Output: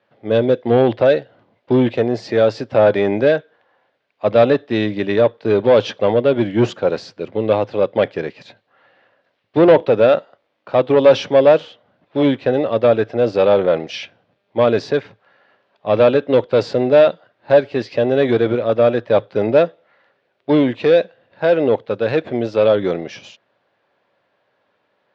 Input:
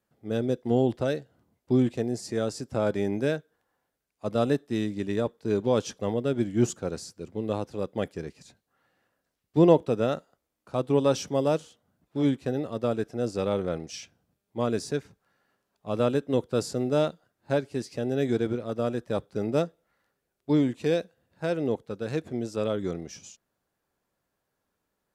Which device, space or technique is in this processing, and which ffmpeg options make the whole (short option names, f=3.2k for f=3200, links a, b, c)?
overdrive pedal into a guitar cabinet: -filter_complex "[0:a]asplit=2[a][b];[b]highpass=f=720:p=1,volume=22dB,asoftclip=type=tanh:threshold=-5.5dB[c];[a][c]amix=inputs=2:normalize=0,lowpass=f=7.3k:p=1,volume=-6dB,highpass=86,equalizer=f=110:t=q:w=4:g=9,equalizer=f=570:t=q:w=4:g=6,equalizer=f=1.3k:t=q:w=4:g=-3,lowpass=f=3.7k:w=0.5412,lowpass=f=3.7k:w=1.3066,volume=2dB"